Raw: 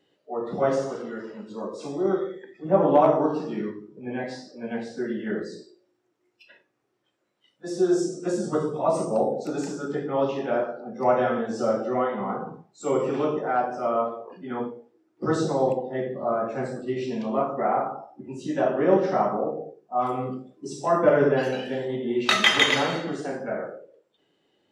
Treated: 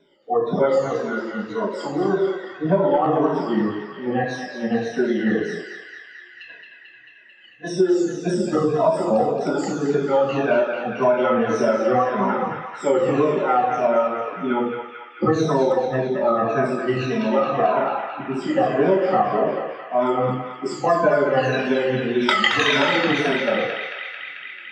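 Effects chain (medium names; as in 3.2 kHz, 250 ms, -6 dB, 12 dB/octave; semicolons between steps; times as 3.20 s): drifting ripple filter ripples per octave 1.6, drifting -1.8 Hz, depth 23 dB; 8.07–8.57 s: peaking EQ 1.1 kHz -15 dB 0.86 oct; compression 6:1, threshold -19 dBFS, peak gain reduction 12.5 dB; distance through air 85 m; on a send: band-passed feedback delay 221 ms, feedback 84%, band-pass 2.3 kHz, level -4.5 dB; on the sum: trim +4.5 dB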